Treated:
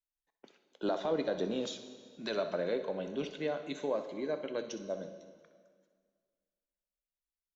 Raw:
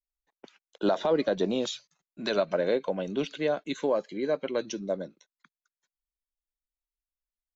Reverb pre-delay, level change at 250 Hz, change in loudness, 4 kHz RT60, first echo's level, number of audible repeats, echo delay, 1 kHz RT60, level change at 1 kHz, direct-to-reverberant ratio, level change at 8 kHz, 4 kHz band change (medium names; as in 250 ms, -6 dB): 5 ms, -7.0 dB, -7.0 dB, 1.8 s, -14.0 dB, 1, 63 ms, 1.9 s, -7.0 dB, 7.5 dB, no reading, -7.0 dB